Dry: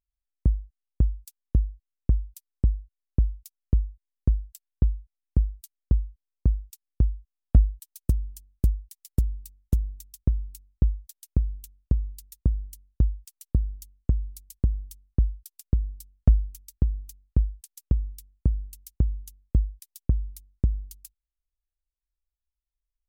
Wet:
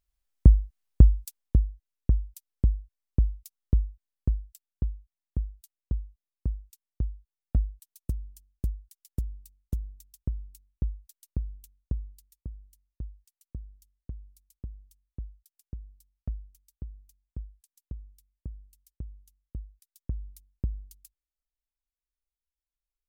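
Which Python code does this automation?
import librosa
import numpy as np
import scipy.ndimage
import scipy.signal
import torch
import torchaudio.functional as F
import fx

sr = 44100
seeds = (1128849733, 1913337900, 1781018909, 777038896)

y = fx.gain(x, sr, db=fx.line((1.2, 7.0), (1.64, -1.0), (3.83, -1.0), (4.94, -8.0), (11.97, -8.0), (12.45, -16.5), (19.69, -16.5), (20.29, -7.5)))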